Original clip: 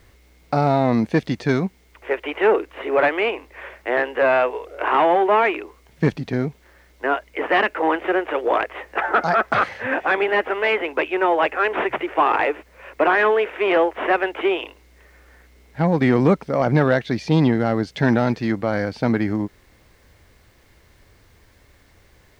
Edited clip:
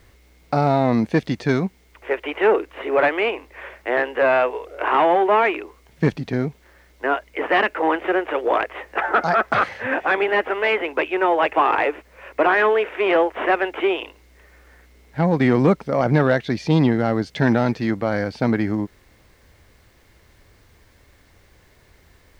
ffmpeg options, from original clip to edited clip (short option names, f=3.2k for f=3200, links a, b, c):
-filter_complex "[0:a]asplit=2[a][b];[a]atrim=end=11.532[c];[b]atrim=start=12.138[d];[c][d]acrossfade=d=0.004:c1=hsin:c2=hsin"